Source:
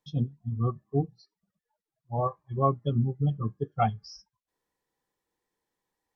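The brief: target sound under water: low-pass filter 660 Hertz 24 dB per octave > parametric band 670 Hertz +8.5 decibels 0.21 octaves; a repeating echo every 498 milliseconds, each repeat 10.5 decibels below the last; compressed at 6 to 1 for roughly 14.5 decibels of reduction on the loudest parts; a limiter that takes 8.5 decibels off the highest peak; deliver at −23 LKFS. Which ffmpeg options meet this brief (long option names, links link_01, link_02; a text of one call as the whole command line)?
ffmpeg -i in.wav -af "acompressor=threshold=-36dB:ratio=6,alimiter=level_in=11dB:limit=-24dB:level=0:latency=1,volume=-11dB,lowpass=frequency=660:width=0.5412,lowpass=frequency=660:width=1.3066,equalizer=frequency=670:width_type=o:width=0.21:gain=8.5,aecho=1:1:498|996|1494:0.299|0.0896|0.0269,volume=23dB" out.wav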